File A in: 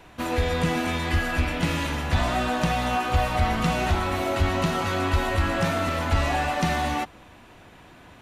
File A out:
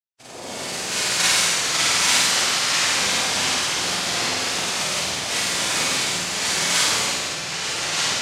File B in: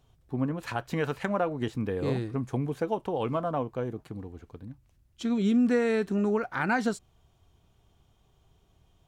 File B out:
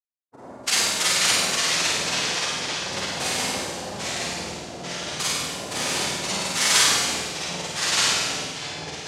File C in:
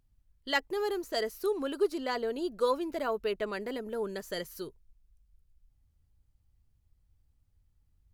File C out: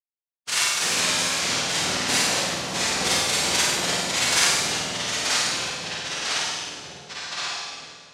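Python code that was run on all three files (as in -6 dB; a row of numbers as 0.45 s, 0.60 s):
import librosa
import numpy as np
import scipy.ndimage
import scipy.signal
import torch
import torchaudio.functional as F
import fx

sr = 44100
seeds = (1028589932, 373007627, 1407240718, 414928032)

p1 = fx.bin_expand(x, sr, power=3.0)
p2 = fx.recorder_agc(p1, sr, target_db=-20.5, rise_db_per_s=70.0, max_gain_db=30)
p3 = fx.double_bandpass(p2, sr, hz=2300.0, octaves=0.89)
p4 = fx.env_lowpass_down(p3, sr, base_hz=2300.0, full_db=-34.5)
p5 = fx.rotary(p4, sr, hz=0.85)
p6 = np.where(np.abs(p5) >= 10.0 ** (-52.0 / 20.0), p5, 0.0)
p7 = p5 + F.gain(torch.from_numpy(p6), -9.5).numpy()
p8 = fx.noise_vocoder(p7, sr, seeds[0], bands=2)
p9 = fx.rev_schroeder(p8, sr, rt60_s=1.2, comb_ms=31, drr_db=-7.5)
p10 = fx.echo_pitch(p9, sr, ms=402, semitones=-2, count=3, db_per_echo=-3.0)
p11 = p10 + fx.room_flutter(p10, sr, wall_m=8.7, rt60_s=0.68, dry=0)
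y = p11 * 10.0 ** (-6 / 20.0) / np.max(np.abs(p11))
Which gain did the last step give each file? +7.5 dB, +10.0 dB, +9.5 dB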